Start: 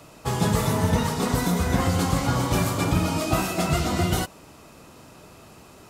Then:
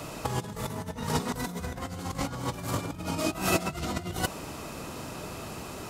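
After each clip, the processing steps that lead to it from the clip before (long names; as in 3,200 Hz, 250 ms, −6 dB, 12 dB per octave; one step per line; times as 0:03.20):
compressor whose output falls as the input rises −30 dBFS, ratio −0.5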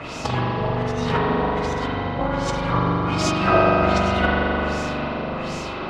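auto-filter low-pass sine 1.3 Hz 540–6,300 Hz
spring reverb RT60 3.4 s, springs 41 ms, chirp 40 ms, DRR −5.5 dB
level +4 dB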